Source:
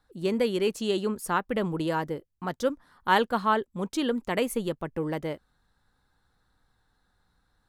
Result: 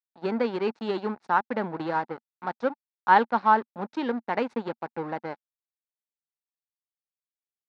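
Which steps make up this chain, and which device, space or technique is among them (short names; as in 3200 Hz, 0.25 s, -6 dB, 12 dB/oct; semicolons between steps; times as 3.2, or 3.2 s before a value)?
blown loudspeaker (crossover distortion -36 dBFS; speaker cabinet 170–4200 Hz, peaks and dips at 230 Hz +4 dB, 850 Hz +10 dB, 1500 Hz +4 dB, 3100 Hz -9 dB)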